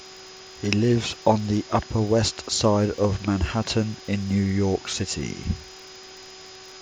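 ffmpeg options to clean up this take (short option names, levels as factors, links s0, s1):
-af "adeclick=t=4,bandreject=f=376.7:t=h:w=4,bandreject=f=753.4:t=h:w=4,bandreject=f=1130.1:t=h:w=4,bandreject=f=1506.8:t=h:w=4,bandreject=f=5000:w=30,afwtdn=0.0089"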